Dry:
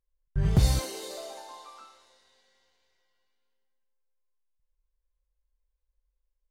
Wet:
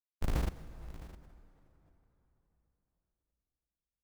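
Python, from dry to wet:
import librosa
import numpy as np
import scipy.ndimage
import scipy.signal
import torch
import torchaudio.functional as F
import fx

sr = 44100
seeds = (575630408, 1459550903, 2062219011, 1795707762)

p1 = fx.pitch_trill(x, sr, semitones=-5.0, every_ms=74)
p2 = fx.peak_eq(p1, sr, hz=980.0, db=5.0, octaves=0.35)
p3 = fx.schmitt(p2, sr, flips_db=-21.5)
p4 = fx.rider(p3, sr, range_db=4, speed_s=0.5)
p5 = fx.stretch_vocoder(p4, sr, factor=0.62)
p6 = p5 + fx.echo_single(p5, sr, ms=661, db=-17.0, dry=0)
p7 = fx.rev_plate(p6, sr, seeds[0], rt60_s=3.9, hf_ratio=0.7, predelay_ms=0, drr_db=14.0)
p8 = fx.pre_swell(p7, sr, db_per_s=36.0)
y = p8 * 10.0 ** (7.0 / 20.0)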